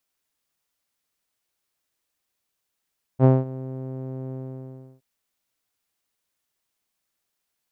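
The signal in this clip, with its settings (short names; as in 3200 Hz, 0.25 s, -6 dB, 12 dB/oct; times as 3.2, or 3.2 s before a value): synth note saw C3 12 dB/oct, low-pass 480 Hz, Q 1.2, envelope 0.5 oct, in 0.44 s, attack 53 ms, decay 0.20 s, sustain -20 dB, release 0.69 s, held 1.13 s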